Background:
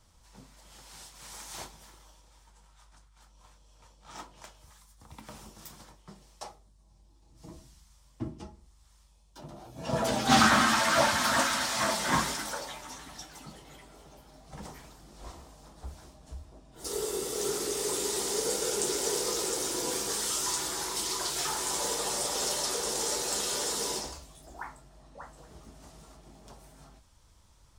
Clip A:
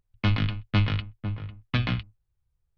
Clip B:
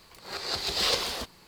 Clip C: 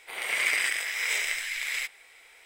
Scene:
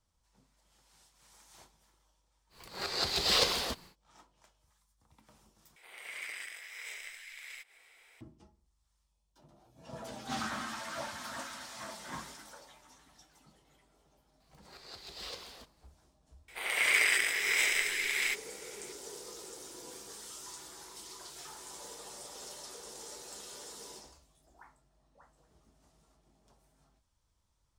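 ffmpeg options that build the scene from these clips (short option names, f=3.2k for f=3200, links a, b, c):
-filter_complex "[2:a]asplit=2[a][b];[3:a]asplit=2[c][d];[0:a]volume=-16dB[e];[a]equalizer=f=160:w=1.5:g=2[f];[c]acompressor=mode=upward:threshold=-34dB:ratio=2.5:attack=3.2:release=140:knee=2.83:detection=peak[g];[e]asplit=2[h][i];[h]atrim=end=5.764[j];[g]atrim=end=2.45,asetpts=PTS-STARTPTS,volume=-16.5dB[k];[i]atrim=start=8.206[l];[f]atrim=end=1.47,asetpts=PTS-STARTPTS,volume=-1dB,afade=t=in:d=0.1,afade=t=out:st=1.37:d=0.1,adelay=2490[m];[b]atrim=end=1.47,asetpts=PTS-STARTPTS,volume=-18dB,afade=t=in:d=0.004:c=hsin,afade=t=out:st=1.466:d=0.004:c=hsin,adelay=14400[n];[d]atrim=end=2.45,asetpts=PTS-STARTPTS,volume=-0.5dB,afade=t=in:d=0.004:c=hsin,afade=t=out:st=2.446:d=0.004:c=hsin,adelay=16480[o];[j][k]acrossfade=d=0.004:c1=hsin:c2=hsin[p];[p][l]acrossfade=d=0.004:c1=hsin:c2=hsin[q];[q][m][n][o]amix=inputs=4:normalize=0"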